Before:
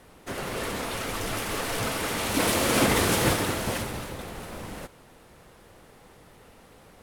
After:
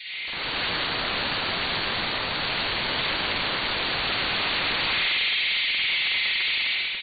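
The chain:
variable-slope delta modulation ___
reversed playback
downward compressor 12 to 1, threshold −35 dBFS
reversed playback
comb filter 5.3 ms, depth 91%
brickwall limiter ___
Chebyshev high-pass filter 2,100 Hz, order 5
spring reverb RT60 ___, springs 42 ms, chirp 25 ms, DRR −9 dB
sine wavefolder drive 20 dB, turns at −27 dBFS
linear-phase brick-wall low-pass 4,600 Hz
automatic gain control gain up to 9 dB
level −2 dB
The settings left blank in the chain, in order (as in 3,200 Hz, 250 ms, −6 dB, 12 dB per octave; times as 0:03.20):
32 kbit/s, −31.5 dBFS, 2.1 s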